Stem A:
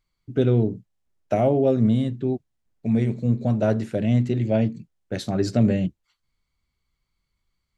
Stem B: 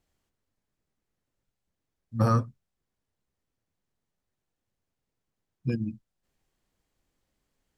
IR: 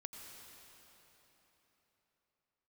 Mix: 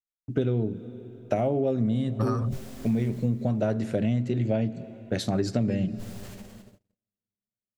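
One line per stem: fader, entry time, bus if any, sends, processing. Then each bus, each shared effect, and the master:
+1.0 dB, 0.00 s, send -11 dB, dry
0.0 dB, 0.00 s, no send, sustainer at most 34 dB/s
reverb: on, RT60 4.0 s, pre-delay 80 ms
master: gate -47 dBFS, range -39 dB; compressor, threshold -22 dBFS, peak gain reduction 10.5 dB

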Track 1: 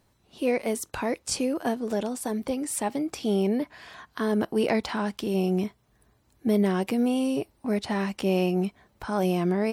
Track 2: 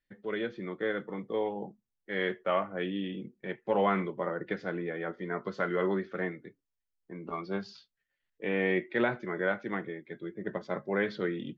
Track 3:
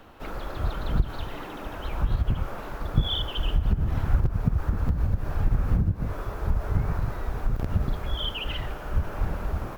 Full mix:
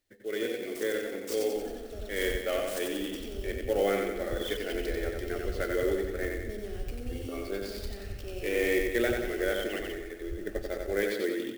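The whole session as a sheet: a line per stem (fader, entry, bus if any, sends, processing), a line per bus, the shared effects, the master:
-16.0 dB, 0.00 s, no send, echo send -3 dB, dry
+1.0 dB, 0.00 s, no send, echo send -4 dB, dry
-13.0 dB, 1.35 s, no send, no echo send, dry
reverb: off
echo: feedback echo 91 ms, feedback 55%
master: high shelf 3500 Hz +8 dB; fixed phaser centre 410 Hz, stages 4; clock jitter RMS 0.023 ms

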